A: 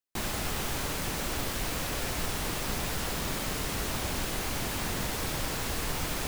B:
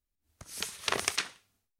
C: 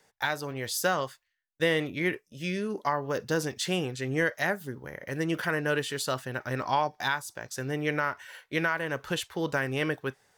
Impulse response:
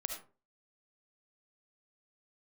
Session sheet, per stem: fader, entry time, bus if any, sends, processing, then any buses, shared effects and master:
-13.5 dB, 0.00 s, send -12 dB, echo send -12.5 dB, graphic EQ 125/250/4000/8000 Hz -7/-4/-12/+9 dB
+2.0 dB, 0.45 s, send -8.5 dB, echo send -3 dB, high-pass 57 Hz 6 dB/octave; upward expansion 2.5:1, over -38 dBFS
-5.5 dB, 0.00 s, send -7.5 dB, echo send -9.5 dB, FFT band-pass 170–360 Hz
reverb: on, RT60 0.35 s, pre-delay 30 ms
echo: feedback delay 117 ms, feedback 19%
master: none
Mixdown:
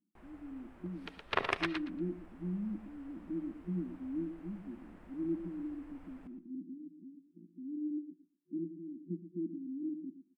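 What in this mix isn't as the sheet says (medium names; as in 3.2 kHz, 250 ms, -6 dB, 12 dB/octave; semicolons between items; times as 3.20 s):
stem A -13.5 dB -> -23.5 dB; master: extra distance through air 440 m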